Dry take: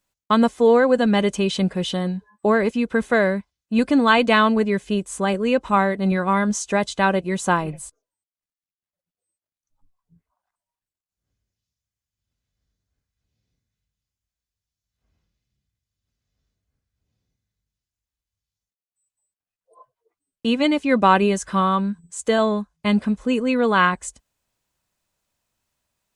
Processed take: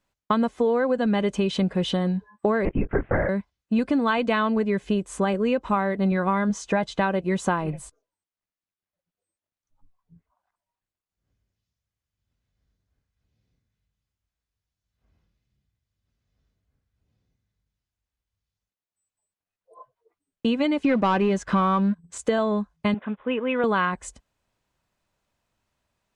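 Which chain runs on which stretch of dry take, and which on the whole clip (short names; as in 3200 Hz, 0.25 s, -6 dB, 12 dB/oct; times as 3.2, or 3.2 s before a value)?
2.65–3.29 steep low-pass 2500 Hz + notch comb 180 Hz + LPC vocoder at 8 kHz whisper
6.49–7.01 high shelf 6500 Hz -7.5 dB + comb 6.2 ms, depth 36%
20.84–22.18 sample leveller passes 2 + air absorption 51 m
22.94–23.64 G.711 law mismatch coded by A + band-pass 1400 Hz, Q 0.53 + careless resampling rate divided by 6×, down none, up filtered
whole clip: LPF 2600 Hz 6 dB/oct; compressor, threshold -23 dBFS; gain +3.5 dB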